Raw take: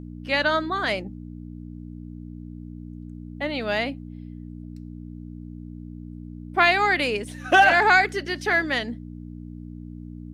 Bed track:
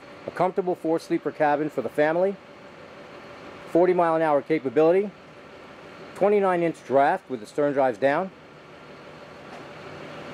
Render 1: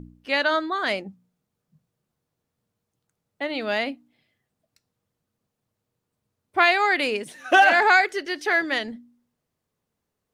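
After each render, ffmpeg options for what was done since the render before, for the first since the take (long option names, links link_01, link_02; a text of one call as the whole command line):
ffmpeg -i in.wav -af "bandreject=frequency=60:width_type=h:width=4,bandreject=frequency=120:width_type=h:width=4,bandreject=frequency=180:width_type=h:width=4,bandreject=frequency=240:width_type=h:width=4,bandreject=frequency=300:width_type=h:width=4" out.wav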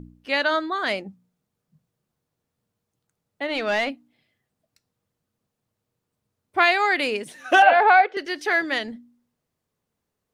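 ffmpeg -i in.wav -filter_complex "[0:a]asplit=3[link_01][link_02][link_03];[link_01]afade=type=out:start_time=3.47:duration=0.02[link_04];[link_02]asplit=2[link_05][link_06];[link_06]highpass=frequency=720:poles=1,volume=13dB,asoftclip=type=tanh:threshold=-14dB[link_07];[link_05][link_07]amix=inputs=2:normalize=0,lowpass=frequency=3000:poles=1,volume=-6dB,afade=type=in:start_time=3.47:duration=0.02,afade=type=out:start_time=3.89:duration=0.02[link_08];[link_03]afade=type=in:start_time=3.89:duration=0.02[link_09];[link_04][link_08][link_09]amix=inputs=3:normalize=0,asettb=1/sr,asplit=3[link_10][link_11][link_12];[link_10]atrim=end=7.624[link_13];[link_11]atrim=start=7.62:end=8.17,asetpts=PTS-STARTPTS,afade=type=in:duration=0.004:curve=qsin,afade=type=out:start_time=0.546:duration=0.004:curve=qsin,highpass=310,equalizer=frequency=330:width_type=q:width=4:gain=-6,equalizer=frequency=510:width_type=q:width=4:gain=9,equalizer=frequency=750:width_type=q:width=4:gain=6,equalizer=frequency=1900:width_type=q:width=4:gain=-7,lowpass=frequency=3300:width=0.5412,lowpass=frequency=3300:width=1.3066[link_14];[link_12]atrim=start=8.166[link_15];[link_13][link_14]acrossfade=duration=0.004:curve1=hsin:curve2=qsin[link_16];[link_16][link_15]acrossfade=duration=0.004:curve1=qsin:curve2=hsin" out.wav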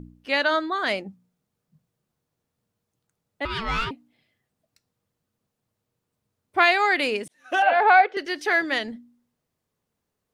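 ffmpeg -i in.wav -filter_complex "[0:a]asettb=1/sr,asplit=3[link_01][link_02][link_03];[link_01]atrim=end=3.454[link_04];[link_02]atrim=start=3.45:end=3.91,asetpts=PTS-STARTPTS,afade=type=in:duration=0.004:curve=qsin,afade=type=out:start_time=0.456:duration=0.004:curve=qsin,aeval=exprs='val(0)*sin(2*PI*670*n/s)':channel_layout=same[link_05];[link_03]atrim=start=3.906[link_06];[link_04][link_05]acrossfade=duration=0.004:curve1=hsin:curve2=qsin[link_07];[link_07][link_06]acrossfade=duration=0.004:curve1=qsin:curve2=hsin,asplit=2[link_08][link_09];[link_08]atrim=end=7.28,asetpts=PTS-STARTPTS,afade=type=out:start_time=7.276:duration=0.004:curve=hsin[link_10];[link_09]atrim=start=7.28,asetpts=PTS-STARTPTS,afade=type=in:duration=0.68[link_11];[link_10][link_11]concat=n=2:v=0:a=1" out.wav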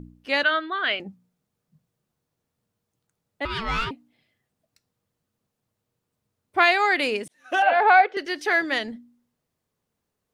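ffmpeg -i in.wav -filter_complex "[0:a]asettb=1/sr,asplit=3[link_01][link_02][link_03];[link_01]atrim=end=0.434[link_04];[link_02]atrim=start=0.43:end=1,asetpts=PTS-STARTPTS,afade=type=in:duration=0.004:curve=qsin,afade=type=out:start_time=0.566:duration=0.004:curve=qsin,highpass=380,equalizer=frequency=540:width_type=q:width=4:gain=-7,equalizer=frequency=890:width_type=q:width=4:gain=-10,equalizer=frequency=1500:width_type=q:width=4:gain=4,equalizer=frequency=3000:width_type=q:width=4:gain=9,lowpass=frequency=3500:width=0.5412,lowpass=frequency=3500:width=1.3066[link_05];[link_03]atrim=start=0.996[link_06];[link_04][link_05]acrossfade=duration=0.004:curve1=hsin:curve2=qsin[link_07];[link_07][link_06]acrossfade=duration=0.004:curve1=qsin:curve2=hsin" out.wav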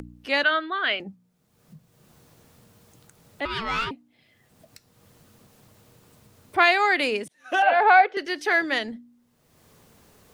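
ffmpeg -i in.wav -filter_complex "[0:a]acrossover=split=180|1000|4400[link_01][link_02][link_03][link_04];[link_01]alimiter=level_in=14.5dB:limit=-24dB:level=0:latency=1,volume=-14.5dB[link_05];[link_05][link_02][link_03][link_04]amix=inputs=4:normalize=0,acompressor=mode=upward:threshold=-35dB:ratio=2.5" out.wav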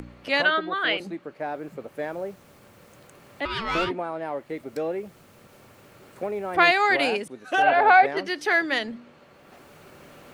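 ffmpeg -i in.wav -i bed.wav -filter_complex "[1:a]volume=-10dB[link_01];[0:a][link_01]amix=inputs=2:normalize=0" out.wav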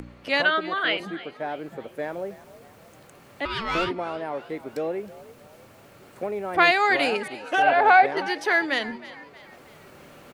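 ffmpeg -i in.wav -filter_complex "[0:a]asplit=5[link_01][link_02][link_03][link_04][link_05];[link_02]adelay=316,afreqshift=60,volume=-17.5dB[link_06];[link_03]adelay=632,afreqshift=120,volume=-24.4dB[link_07];[link_04]adelay=948,afreqshift=180,volume=-31.4dB[link_08];[link_05]adelay=1264,afreqshift=240,volume=-38.3dB[link_09];[link_01][link_06][link_07][link_08][link_09]amix=inputs=5:normalize=0" out.wav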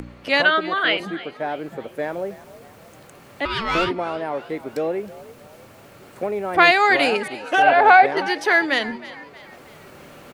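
ffmpeg -i in.wav -af "volume=4.5dB,alimiter=limit=-2dB:level=0:latency=1" out.wav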